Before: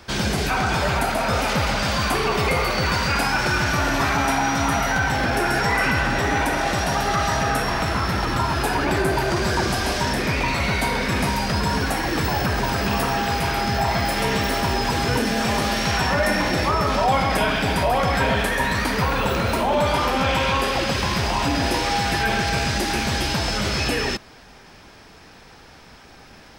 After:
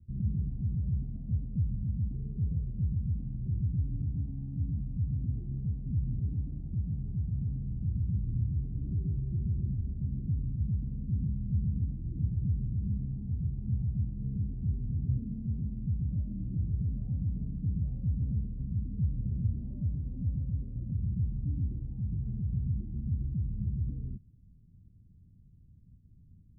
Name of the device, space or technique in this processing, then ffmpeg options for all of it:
the neighbour's flat through the wall: -af "lowpass=f=180:w=0.5412,lowpass=f=180:w=1.3066,equalizer=f=100:t=o:w=0.77:g=5.5,volume=0.473"

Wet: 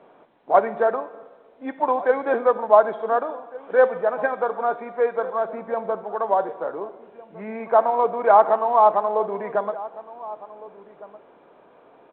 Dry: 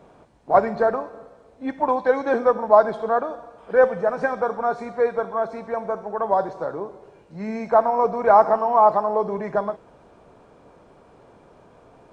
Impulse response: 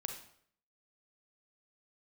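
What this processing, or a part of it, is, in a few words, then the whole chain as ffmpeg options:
telephone: -filter_complex "[0:a]asettb=1/sr,asplit=3[s0][s1][s2];[s0]atrim=end=5.494[s3];[s1]atrim=start=5.49:end=6.04,asetpts=PTS-STARTPTS,afade=t=in:d=0.004:c=qsin,afade=t=out:st=0.546:d=0.004:c=qsin,aemphasis=mode=reproduction:type=bsi[s4];[s2]atrim=start=6.036[s5];[s3][s4]acrossfade=d=0.004:c1=hsin:c2=qsin[s6];[s6][s5]acrossfade=d=0.004:c1=qsin:c2=hsin,highpass=290,lowpass=3200,asplit=2[s7][s8];[s8]adelay=1458,volume=0.141,highshelf=f=4000:g=-32.8[s9];[s7][s9]amix=inputs=2:normalize=0" -ar 8000 -c:a pcm_alaw

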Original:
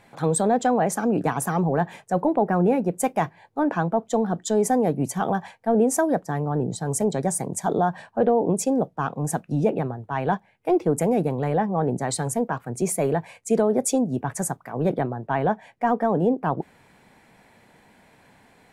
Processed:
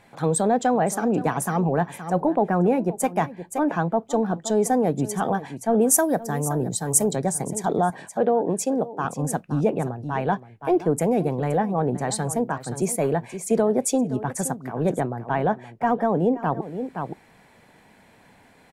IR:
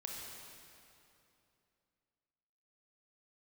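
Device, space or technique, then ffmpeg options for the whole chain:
ducked delay: -filter_complex "[0:a]asplit=3[s0][s1][s2];[s1]adelay=521,volume=0.531[s3];[s2]apad=whole_len=848583[s4];[s3][s4]sidechaincompress=threshold=0.0355:ratio=8:attack=7.3:release=390[s5];[s0][s5]amix=inputs=2:normalize=0,asettb=1/sr,asplit=3[s6][s7][s8];[s6]atrim=end=5.814[s9];[s7]atrim=start=5.81:end=7.16,asetpts=PTS-STARTPTS,afade=t=in:d=0.004:c=qsin,afade=t=out:st=1.346:d=0.004:c=qsin,aemphasis=mode=production:type=50fm[s10];[s8]atrim=start=7.156[s11];[s9][s10]acrossfade=d=0.004:c1=hsin:c2=qsin[s12];[s12][s11]acrossfade=d=0.004:c1=qsin:c2=hsin,asettb=1/sr,asplit=3[s13][s14][s15];[s13]atrim=end=7.904[s16];[s14]atrim=start=7.9:end=9.05,asetpts=PTS-STARTPTS,afade=t=in:d=0.004:c=qsin,afade=t=out:st=1.146:d=0.004:c=qsin,highpass=f=220:p=1[s17];[s15]atrim=start=9.046[s18];[s16][s17]acrossfade=d=0.004:c1=hsin:c2=qsin[s19];[s19][s18]acrossfade=d=0.004:c1=qsin:c2=hsin"

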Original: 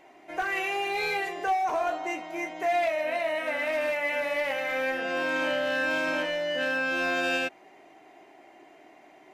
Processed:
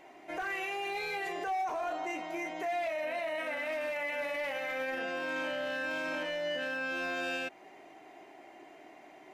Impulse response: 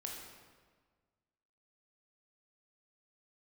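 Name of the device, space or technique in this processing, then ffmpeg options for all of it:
stacked limiters: -af "alimiter=limit=0.0708:level=0:latency=1:release=211,alimiter=level_in=1.68:limit=0.0631:level=0:latency=1:release=26,volume=0.596"

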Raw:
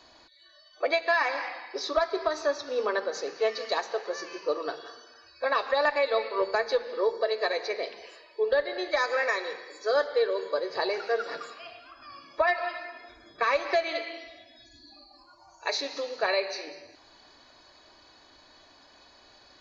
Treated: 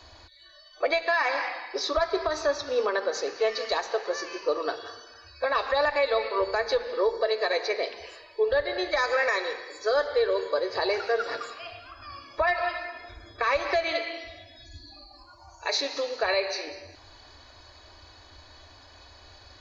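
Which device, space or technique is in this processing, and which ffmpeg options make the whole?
car stereo with a boomy subwoofer: -af "lowshelf=f=120:t=q:w=3:g=10,alimiter=limit=0.106:level=0:latency=1:release=66,volume=1.58"

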